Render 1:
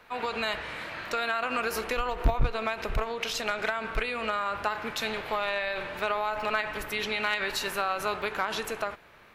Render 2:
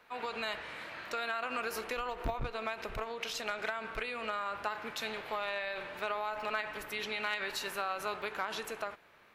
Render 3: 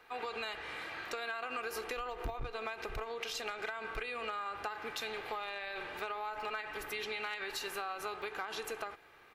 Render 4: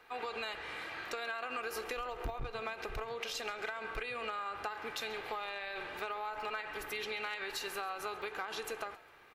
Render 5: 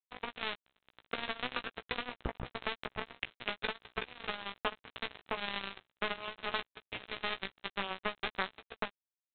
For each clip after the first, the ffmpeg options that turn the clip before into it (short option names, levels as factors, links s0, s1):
-af "lowshelf=f=110:g=-9.5,volume=0.473"
-af "aecho=1:1:2.5:0.45,acompressor=threshold=0.0126:ratio=3,volume=1.12"
-filter_complex "[0:a]asplit=4[s0][s1][s2][s3];[s1]adelay=135,afreqshift=88,volume=0.106[s4];[s2]adelay=270,afreqshift=176,volume=0.038[s5];[s3]adelay=405,afreqshift=264,volume=0.0138[s6];[s0][s4][s5][s6]amix=inputs=4:normalize=0"
-filter_complex "[0:a]aresample=8000,acrusher=bits=4:mix=0:aa=0.5,aresample=44100,asplit=2[s0][s1];[s1]adelay=16,volume=0.447[s2];[s0][s2]amix=inputs=2:normalize=0,volume=2"